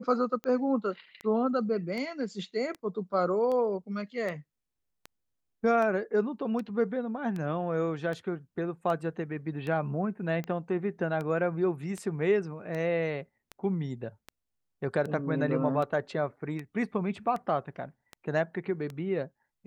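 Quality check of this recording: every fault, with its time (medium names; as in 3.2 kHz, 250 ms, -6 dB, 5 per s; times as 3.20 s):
tick 78 rpm -24 dBFS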